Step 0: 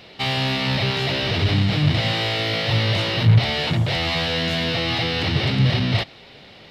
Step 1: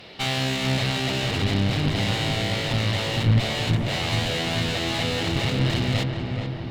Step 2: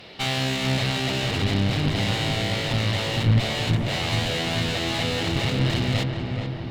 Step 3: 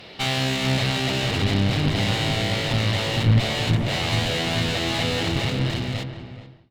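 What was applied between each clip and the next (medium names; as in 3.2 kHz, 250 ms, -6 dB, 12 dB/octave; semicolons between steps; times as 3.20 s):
gain riding 2 s; one-sided clip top -28 dBFS; filtered feedback delay 431 ms, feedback 69%, low-pass 1.8 kHz, level -5 dB; trim -2 dB
no audible change
fade out at the end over 1.49 s; trim +1.5 dB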